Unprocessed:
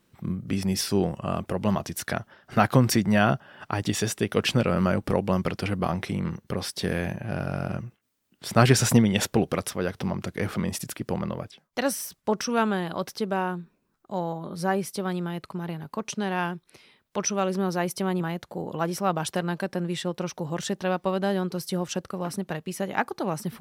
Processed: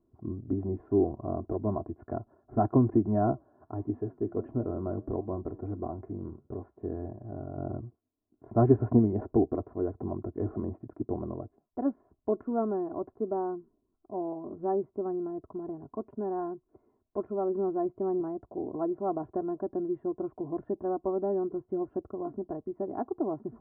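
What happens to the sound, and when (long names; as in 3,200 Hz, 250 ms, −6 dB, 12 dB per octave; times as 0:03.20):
0:03.31–0:07.58: flanger 1.5 Hz, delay 5.8 ms, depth 7.7 ms, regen −82%
whole clip: Bessel low-pass filter 600 Hz, order 6; dynamic equaliser 310 Hz, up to +3 dB, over −40 dBFS, Q 2.3; comb filter 2.9 ms, depth 82%; level −3.5 dB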